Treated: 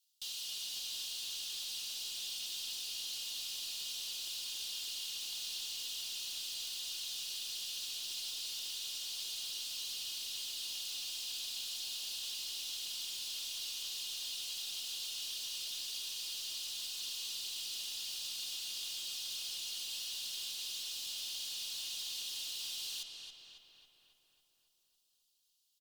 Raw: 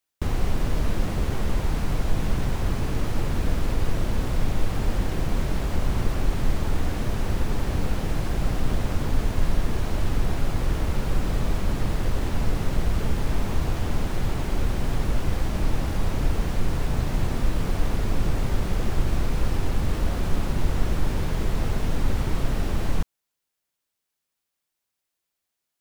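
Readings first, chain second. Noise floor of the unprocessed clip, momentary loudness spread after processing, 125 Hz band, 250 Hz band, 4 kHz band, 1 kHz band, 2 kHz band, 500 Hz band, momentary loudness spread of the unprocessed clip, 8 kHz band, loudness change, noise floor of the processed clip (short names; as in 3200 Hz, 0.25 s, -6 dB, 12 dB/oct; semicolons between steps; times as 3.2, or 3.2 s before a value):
-82 dBFS, 0 LU, under -40 dB, under -40 dB, +4.5 dB, -30.0 dB, -14.0 dB, under -35 dB, 1 LU, +2.5 dB, -10.5 dB, -76 dBFS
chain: steep high-pass 2800 Hz 72 dB/oct; bell 4400 Hz +5.5 dB 0.91 oct; comb 2.8 ms, depth 90%; in parallel at 0 dB: limiter -37 dBFS, peak gain reduction 11 dB; on the sum: added harmonics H 5 -28 dB, 8 -32 dB, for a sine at -23 dBFS; soft clip -27 dBFS, distortion -24 dB; on a send: darkening echo 0.275 s, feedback 66%, low-pass 3600 Hz, level -3.5 dB; on the sum: gain -6 dB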